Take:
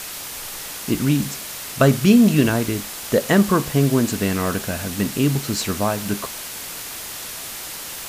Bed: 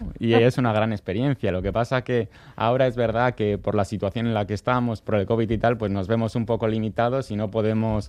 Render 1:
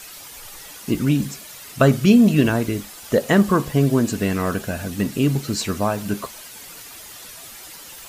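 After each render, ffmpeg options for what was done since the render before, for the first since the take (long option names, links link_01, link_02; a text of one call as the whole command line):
ffmpeg -i in.wav -af "afftdn=noise_reduction=10:noise_floor=-33" out.wav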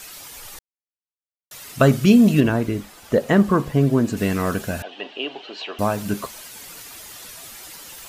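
ffmpeg -i in.wav -filter_complex "[0:a]asettb=1/sr,asplit=3[link_01][link_02][link_03];[link_01]atrim=end=2.404[link_04];[link_02]atrim=start=2.4:end=4.17,asetpts=PTS-STARTPTS,afade=type=in:duration=0.004:curve=qsin,afade=type=out:start_time=1.766:duration=0.004:curve=qsin,highshelf=frequency=3300:gain=-9.5[link_05];[link_03]atrim=start=4.166[link_06];[link_04][link_05]acrossfade=duration=0.004:curve1=hsin:curve2=qsin[link_07];[link_07][link_06]acrossfade=duration=0.004:curve1=qsin:curve2=hsin,asettb=1/sr,asplit=3[link_08][link_09][link_10];[link_08]atrim=end=4.824[link_11];[link_09]atrim=start=4.82:end=5.79,asetpts=PTS-STARTPTS,afade=type=in:duration=0.004:curve=qsin,afade=type=out:start_time=0.966:duration=0.004:curve=qsin,highpass=frequency=440:width=0.5412,highpass=frequency=440:width=1.3066,equalizer=frequency=500:width_type=q:width=4:gain=-4,equalizer=frequency=740:width_type=q:width=4:gain=7,equalizer=frequency=1300:width_type=q:width=4:gain=-7,equalizer=frequency=2100:width_type=q:width=4:gain=-7,equalizer=frequency=3000:width_type=q:width=4:gain=10,lowpass=frequency=3400:width=0.5412,lowpass=frequency=3400:width=1.3066[link_12];[link_10]atrim=start=5.786[link_13];[link_11][link_12]acrossfade=duration=0.004:curve1=hsin:curve2=qsin[link_14];[link_14][link_13]acrossfade=duration=0.004:curve1=qsin:curve2=hsin,asplit=3[link_15][link_16][link_17];[link_15]atrim=end=0.59,asetpts=PTS-STARTPTS,afade=type=out:start_time=0.586:duration=0.004:curve=hsin[link_18];[link_16]atrim=start=0.59:end=1.51,asetpts=PTS-STARTPTS,volume=0[link_19];[link_17]atrim=start=1.51,asetpts=PTS-STARTPTS,afade=type=in:duration=0.004:curve=hsin[link_20];[link_18][link_19][link_20]concat=n=3:v=0:a=1" out.wav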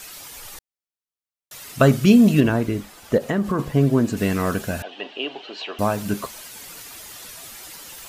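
ffmpeg -i in.wav -filter_complex "[0:a]asettb=1/sr,asplit=3[link_01][link_02][link_03];[link_01]atrim=end=3.174[link_04];[link_02]atrim=start=3.17:end=3.59,asetpts=PTS-STARTPTS,afade=type=in:duration=0.004:curve=qsin,afade=type=out:start_time=0.416:duration=0.004:curve=qsin,acompressor=threshold=-18dB:ratio=4:attack=3.2:release=140:knee=1:detection=peak[link_05];[link_03]atrim=start=3.586[link_06];[link_04][link_05]acrossfade=duration=0.004:curve1=hsin:curve2=qsin[link_07];[link_07][link_06]acrossfade=duration=0.004:curve1=qsin:curve2=hsin" out.wav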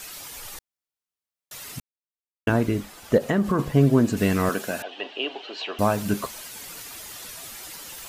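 ffmpeg -i in.wav -filter_complex "[0:a]asettb=1/sr,asplit=3[link_01][link_02][link_03];[link_01]atrim=end=4.494[link_04];[link_02]atrim=start=4.49:end=5.63,asetpts=PTS-STARTPTS,afade=type=in:duration=0.004:curve=qsin,afade=type=out:start_time=1.136:duration=0.004:curve=qsin,highpass=270[link_05];[link_03]atrim=start=5.626[link_06];[link_04][link_05]acrossfade=duration=0.004:curve1=hsin:curve2=qsin[link_07];[link_07][link_06]acrossfade=duration=0.004:curve1=qsin:curve2=hsin,asplit=3[link_08][link_09][link_10];[link_08]atrim=end=1.8,asetpts=PTS-STARTPTS,afade=type=out:start_time=1.796:duration=0.004:curve=hsin[link_11];[link_09]atrim=start=1.8:end=2.47,asetpts=PTS-STARTPTS,volume=0[link_12];[link_10]atrim=start=2.47,asetpts=PTS-STARTPTS,afade=type=in:duration=0.004:curve=hsin[link_13];[link_11][link_12][link_13]concat=n=3:v=0:a=1" out.wav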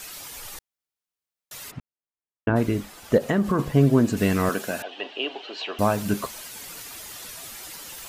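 ffmpeg -i in.wav -filter_complex "[0:a]asplit=3[link_01][link_02][link_03];[link_01]afade=type=out:start_time=1.7:duration=0.02[link_04];[link_02]lowpass=1700,afade=type=in:start_time=1.7:duration=0.02,afade=type=out:start_time=2.55:duration=0.02[link_05];[link_03]afade=type=in:start_time=2.55:duration=0.02[link_06];[link_04][link_05][link_06]amix=inputs=3:normalize=0" out.wav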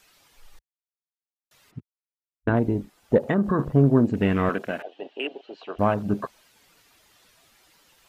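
ffmpeg -i in.wav -filter_complex "[0:a]acrossover=split=5200[link_01][link_02];[link_02]acompressor=threshold=-47dB:ratio=4:attack=1:release=60[link_03];[link_01][link_03]amix=inputs=2:normalize=0,afwtdn=0.0251" out.wav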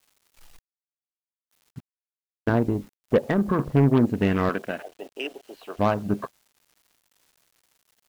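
ffmpeg -i in.wav -af "aeval=exprs='0.447*(cos(1*acos(clip(val(0)/0.447,-1,1)))-cos(1*PI/2))+0.0562*(cos(3*acos(clip(val(0)/0.447,-1,1)))-cos(3*PI/2))+0.0891*(cos(5*acos(clip(val(0)/0.447,-1,1)))-cos(5*PI/2))+0.0562*(cos(7*acos(clip(val(0)/0.447,-1,1)))-cos(7*PI/2))':channel_layout=same,acrusher=bits=8:mix=0:aa=0.000001" out.wav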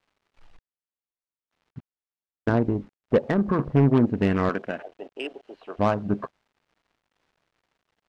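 ffmpeg -i in.wav -af "adynamicsmooth=sensitivity=1.5:basefreq=2800" out.wav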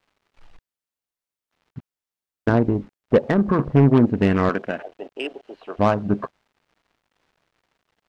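ffmpeg -i in.wav -af "volume=4dB" out.wav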